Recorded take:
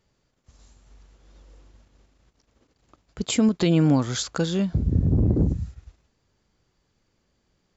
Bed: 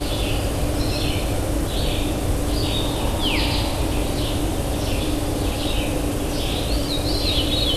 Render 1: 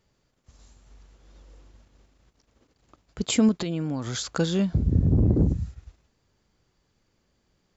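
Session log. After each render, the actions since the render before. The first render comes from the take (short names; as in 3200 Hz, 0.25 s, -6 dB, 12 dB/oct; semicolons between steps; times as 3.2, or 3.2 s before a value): 3.55–4.31 compressor, threshold -26 dBFS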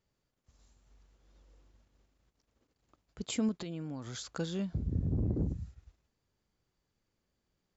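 gain -11.5 dB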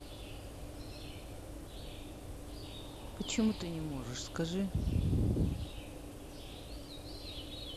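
add bed -24.5 dB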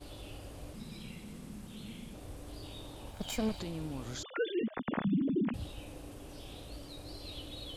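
0.73–2.14 frequency shift -260 Hz; 3.11–3.59 minimum comb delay 1.3 ms; 4.23–5.54 sine-wave speech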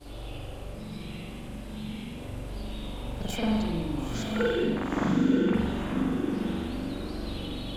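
on a send: diffused feedback echo 0.934 s, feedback 41%, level -4.5 dB; on the sum: spring tank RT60 1 s, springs 42 ms, chirp 50 ms, DRR -6.5 dB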